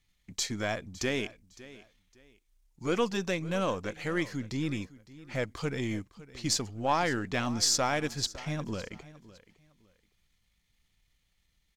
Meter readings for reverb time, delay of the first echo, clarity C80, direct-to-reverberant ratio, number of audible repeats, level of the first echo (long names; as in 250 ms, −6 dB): no reverb audible, 559 ms, no reverb audible, no reverb audible, 2, −18.5 dB